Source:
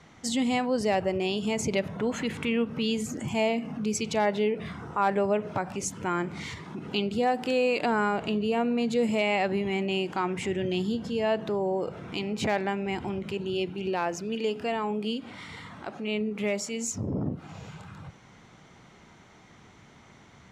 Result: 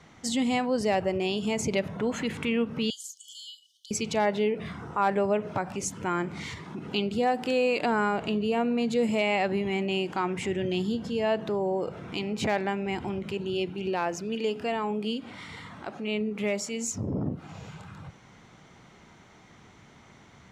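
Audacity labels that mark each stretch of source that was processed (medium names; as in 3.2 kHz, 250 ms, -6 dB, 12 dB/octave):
2.900000	3.910000	brick-wall FIR high-pass 2.9 kHz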